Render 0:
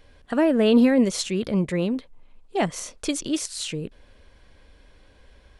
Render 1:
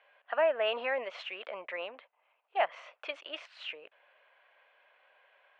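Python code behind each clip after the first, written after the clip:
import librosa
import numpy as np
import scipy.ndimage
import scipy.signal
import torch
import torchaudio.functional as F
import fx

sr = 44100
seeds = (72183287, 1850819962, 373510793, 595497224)

y = scipy.signal.sosfilt(scipy.signal.cheby1(3, 1.0, [630.0, 2800.0], 'bandpass', fs=sr, output='sos'), x)
y = y * librosa.db_to_amplitude(-2.0)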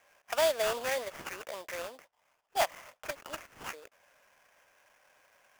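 y = fx.sample_hold(x, sr, seeds[0], rate_hz=4100.0, jitter_pct=20)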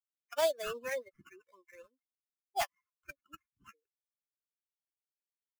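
y = fx.bin_expand(x, sr, power=3.0)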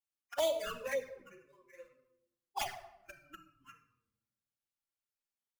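y = fx.room_shoebox(x, sr, seeds[1], volume_m3=2800.0, walls='furnished', distance_m=2.3)
y = fx.env_flanger(y, sr, rest_ms=8.7, full_db=-28.0)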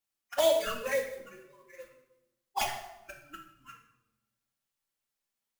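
y = fx.mod_noise(x, sr, seeds[2], snr_db=18)
y = fx.rev_double_slope(y, sr, seeds[3], early_s=0.58, late_s=1.8, knee_db=-26, drr_db=4.5)
y = y * librosa.db_to_amplitude(5.0)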